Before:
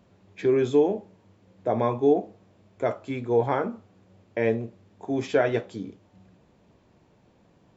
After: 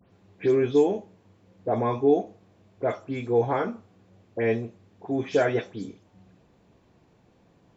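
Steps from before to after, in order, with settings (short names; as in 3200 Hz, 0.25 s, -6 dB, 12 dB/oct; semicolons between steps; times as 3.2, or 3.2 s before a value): spectral delay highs late, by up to 0.123 s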